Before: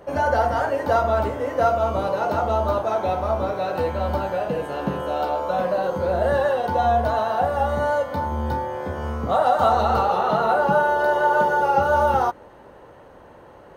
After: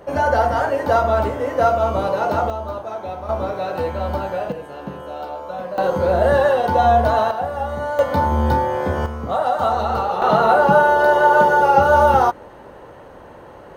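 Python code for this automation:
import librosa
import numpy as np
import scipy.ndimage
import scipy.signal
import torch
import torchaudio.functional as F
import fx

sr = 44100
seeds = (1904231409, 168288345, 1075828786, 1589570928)

y = fx.gain(x, sr, db=fx.steps((0.0, 3.0), (2.5, -6.0), (3.29, 0.5), (4.52, -6.0), (5.78, 5.0), (7.31, -2.5), (7.99, 7.5), (9.06, -1.0), (10.22, 5.5)))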